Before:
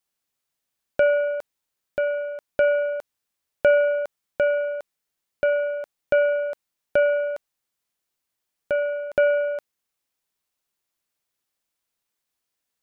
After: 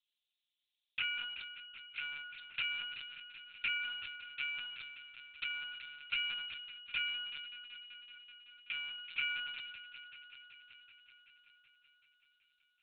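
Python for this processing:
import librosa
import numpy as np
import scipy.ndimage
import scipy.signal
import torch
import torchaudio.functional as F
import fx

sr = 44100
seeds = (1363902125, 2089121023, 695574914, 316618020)

p1 = fx.rattle_buzz(x, sr, strikes_db=-34.0, level_db=-12.0)
p2 = scipy.signal.sosfilt(scipy.signal.cheby2(4, 80, 670.0, 'highpass', fs=sr, output='sos'), p1)
p3 = fx.tilt_eq(p2, sr, slope=-2.5)
p4 = fx.level_steps(p3, sr, step_db=12)
p5 = p3 + (p4 * 10.0 ** (2.5 / 20.0))
p6 = fx.leveller(p5, sr, passes=1)
p7 = 10.0 ** (-35.5 / 20.0) * (np.abs((p6 / 10.0 ** (-35.5 / 20.0) + 3.0) % 4.0 - 2.0) - 1.0)
p8 = p7 + fx.echo_heads(p7, sr, ms=190, heads='first and second', feedback_pct=73, wet_db=-15.0, dry=0)
p9 = fx.room_shoebox(p8, sr, seeds[0], volume_m3=220.0, walls='furnished', distance_m=0.84)
p10 = fx.lpc_vocoder(p9, sr, seeds[1], excitation='pitch_kept', order=10)
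p11 = fx.sustainer(p10, sr, db_per_s=32.0)
y = p11 * 10.0 ** (12.0 / 20.0)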